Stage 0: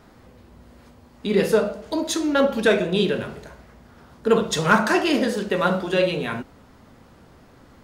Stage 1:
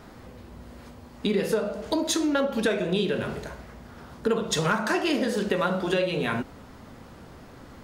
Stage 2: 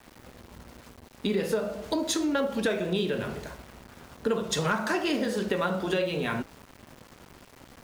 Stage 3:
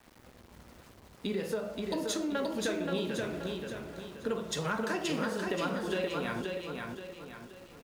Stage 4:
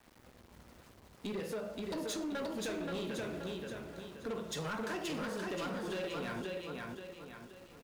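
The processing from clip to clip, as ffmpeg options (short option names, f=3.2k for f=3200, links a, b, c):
-af "acompressor=threshold=-26dB:ratio=6,volume=4dB"
-af "aeval=exprs='val(0)*gte(abs(val(0)),0.0075)':c=same,volume=-2.5dB"
-af "aecho=1:1:527|1054|1581|2108|2635:0.631|0.259|0.106|0.0435|0.0178,volume=-6.5dB"
-af "volume=31dB,asoftclip=hard,volume=-31dB,volume=-3.5dB"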